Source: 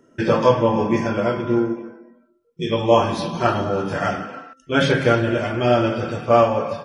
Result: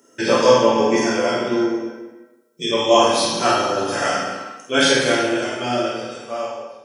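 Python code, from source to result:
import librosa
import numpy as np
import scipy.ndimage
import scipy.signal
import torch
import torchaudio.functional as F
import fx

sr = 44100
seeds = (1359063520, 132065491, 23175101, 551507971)

y = fx.fade_out_tail(x, sr, length_s=2.23)
y = scipy.signal.sosfilt(scipy.signal.butter(2, 120.0, 'highpass', fs=sr, output='sos'), y)
y = fx.bass_treble(y, sr, bass_db=-11, treble_db=15)
y = fx.doubler(y, sr, ms=49.0, db=-5.0)
y = fx.rev_plate(y, sr, seeds[0], rt60_s=0.95, hf_ratio=0.9, predelay_ms=0, drr_db=-1.0)
y = y * 10.0 ** (-1.0 / 20.0)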